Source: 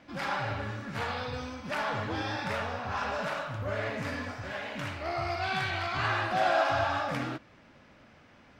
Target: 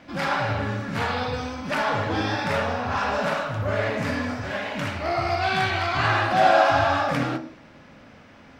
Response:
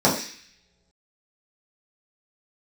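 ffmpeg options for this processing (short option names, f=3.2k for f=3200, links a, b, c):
-filter_complex "[0:a]asplit=2[a][b];[1:a]atrim=start_sample=2205,adelay=29[c];[b][c]afir=irnorm=-1:irlink=0,volume=-28dB[d];[a][d]amix=inputs=2:normalize=0,volume=7dB"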